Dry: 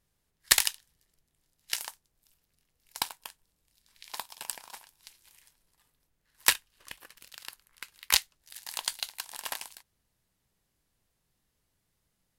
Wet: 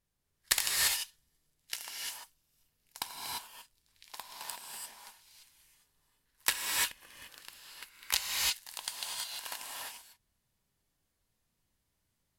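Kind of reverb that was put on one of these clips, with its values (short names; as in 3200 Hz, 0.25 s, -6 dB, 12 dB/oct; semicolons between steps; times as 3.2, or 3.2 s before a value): non-linear reverb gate 0.37 s rising, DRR -2.5 dB; gain -7 dB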